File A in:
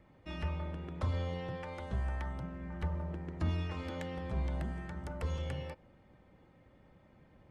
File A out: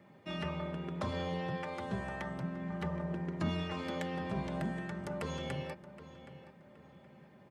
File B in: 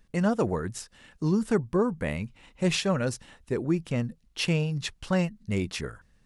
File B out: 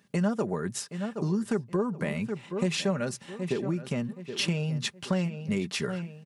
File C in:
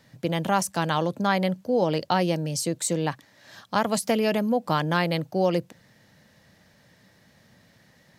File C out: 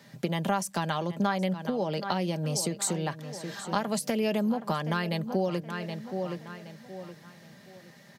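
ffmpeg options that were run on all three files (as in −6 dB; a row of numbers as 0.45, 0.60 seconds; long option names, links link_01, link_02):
-filter_complex "[0:a]highpass=frequency=110:width=0.5412,highpass=frequency=110:width=1.3066,asplit=2[link_01][link_02];[link_02]adelay=771,lowpass=frequency=4200:poles=1,volume=-14.5dB,asplit=2[link_03][link_04];[link_04]adelay=771,lowpass=frequency=4200:poles=1,volume=0.33,asplit=2[link_05][link_06];[link_06]adelay=771,lowpass=frequency=4200:poles=1,volume=0.33[link_07];[link_01][link_03][link_05][link_07]amix=inputs=4:normalize=0,acompressor=threshold=-30dB:ratio=6,aecho=1:1:5:0.41,volume=3.5dB"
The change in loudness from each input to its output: +0.5, −2.0, −5.0 LU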